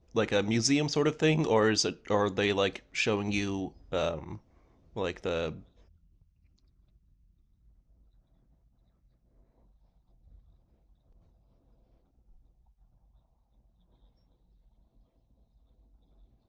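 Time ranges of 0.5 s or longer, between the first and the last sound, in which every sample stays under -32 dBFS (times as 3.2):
4.34–4.97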